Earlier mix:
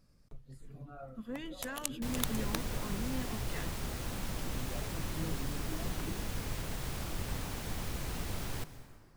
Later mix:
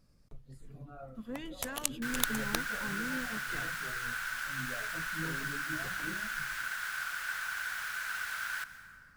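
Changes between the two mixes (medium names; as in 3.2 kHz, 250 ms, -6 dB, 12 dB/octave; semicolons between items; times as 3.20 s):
first sound +4.5 dB; second sound: add resonant high-pass 1.5 kHz, resonance Q 12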